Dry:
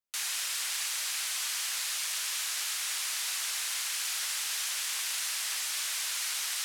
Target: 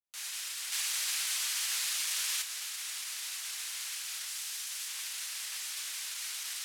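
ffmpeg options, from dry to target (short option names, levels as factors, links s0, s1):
-filter_complex "[0:a]asettb=1/sr,asplit=3[s0][s1][s2];[s0]atrim=end=4.284[s3];[s1]atrim=start=4.28:end=4.88,asetpts=PTS-STARTPTS,afade=t=in:d=0.004:c=qsin,afade=t=out:st=0.596:d=0.004:c=qsin,bass=f=250:g=-13,treble=f=4000:g=3[s4];[s2]atrim=start=4.876[s5];[s3][s4]acrossfade=d=0.004:c1=hsin:c2=qsin[s6];[s6][s5]acrossfade=d=0.004:c1=qsin:c2=hsin,alimiter=level_in=1.78:limit=0.0631:level=0:latency=1,volume=0.562,asettb=1/sr,asplit=3[s7][s8][s9];[s7]atrim=end=0.724[s10];[s8]atrim=start=0.72:end=2.42,asetpts=PTS-STARTPTS,afade=t=in:d=0.004:c=qsin,afade=t=out:st=1.696:d=0.004:c=qsin,acontrast=51[s11];[s9]atrim=start=2.416[s12];[s10][s11]acrossfade=d=0.004:c1=hsin:c2=qsin[s13];[s13][s12]acrossfade=d=0.004:c1=qsin:c2=hsin,adynamicequalizer=threshold=0.00398:dfrequency=1500:dqfactor=0.7:tfrequency=1500:tqfactor=0.7:attack=5:release=100:ratio=0.375:range=2.5:mode=boostabove:tftype=highshelf,volume=0.531"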